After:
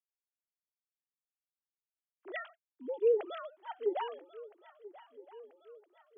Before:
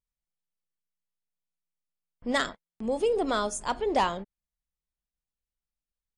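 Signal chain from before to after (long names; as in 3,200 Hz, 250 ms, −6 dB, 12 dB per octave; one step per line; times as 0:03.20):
three sine waves on the formant tracks
high-pass filter 190 Hz 24 dB per octave
on a send: feedback echo with a long and a short gap by turns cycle 1,315 ms, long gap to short 3 to 1, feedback 48%, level −18.5 dB
on the sum: level −6.5 dB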